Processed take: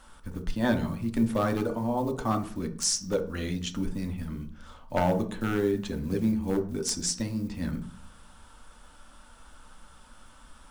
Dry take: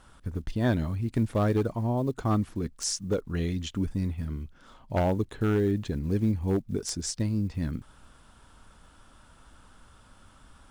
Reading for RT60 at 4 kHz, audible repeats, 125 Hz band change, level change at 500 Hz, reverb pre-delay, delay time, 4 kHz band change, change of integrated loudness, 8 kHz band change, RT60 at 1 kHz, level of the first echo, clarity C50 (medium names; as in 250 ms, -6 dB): 0.40 s, no echo, -5.0 dB, +0.5 dB, 3 ms, no echo, +3.5 dB, 0.0 dB, +4.0 dB, 0.40 s, no echo, 11.5 dB